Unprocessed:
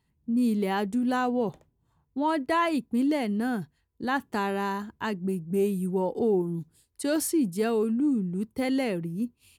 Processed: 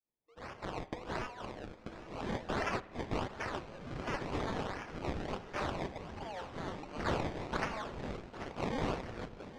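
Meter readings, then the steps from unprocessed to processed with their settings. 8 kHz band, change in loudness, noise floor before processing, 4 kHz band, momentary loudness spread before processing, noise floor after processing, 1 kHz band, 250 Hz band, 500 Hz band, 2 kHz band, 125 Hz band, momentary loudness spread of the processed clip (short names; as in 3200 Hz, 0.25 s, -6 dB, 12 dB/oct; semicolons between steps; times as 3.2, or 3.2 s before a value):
-15.5 dB, -12.0 dB, -74 dBFS, -5.5 dB, 8 LU, -57 dBFS, -8.5 dB, -16.5 dB, -11.5 dB, -6.5 dB, -6.5 dB, 10 LU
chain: opening faded in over 1.08 s; spectral gate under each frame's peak -20 dB weak; HPF 440 Hz 24 dB/oct; high shelf 3500 Hz +11 dB; decimation with a swept rate 22×, swing 100% 1.4 Hz; spring tank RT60 1 s, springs 51 ms, DRR 17.5 dB; echoes that change speed 0.474 s, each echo -7 st, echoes 3, each echo -6 dB; air absorption 130 m; on a send: swung echo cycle 1.344 s, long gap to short 1.5:1, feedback 32%, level -16 dB; on the sum: gain +2.5 dB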